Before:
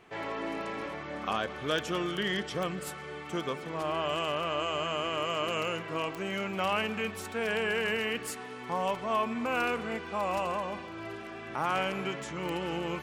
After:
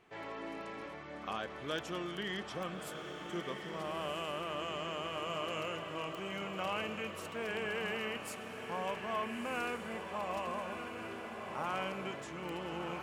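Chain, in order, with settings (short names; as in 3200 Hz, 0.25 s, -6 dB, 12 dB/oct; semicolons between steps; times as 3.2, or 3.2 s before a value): diffused feedback echo 1.326 s, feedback 51%, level -6.5 dB; gain -8 dB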